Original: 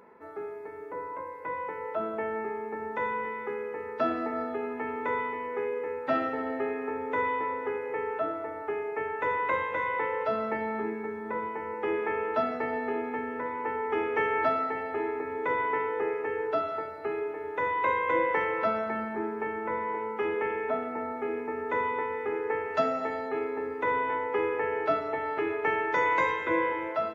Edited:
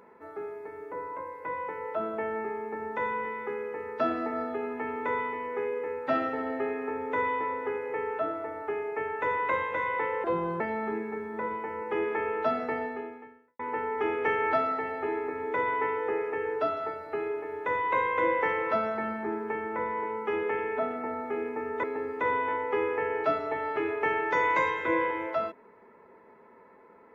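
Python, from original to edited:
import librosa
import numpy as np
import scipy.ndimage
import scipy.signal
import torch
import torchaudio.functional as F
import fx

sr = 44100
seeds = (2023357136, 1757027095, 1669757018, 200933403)

y = fx.edit(x, sr, fx.speed_span(start_s=10.24, length_s=0.28, speed=0.77),
    fx.fade_out_span(start_s=12.67, length_s=0.84, curve='qua'),
    fx.cut(start_s=21.75, length_s=1.7), tone=tone)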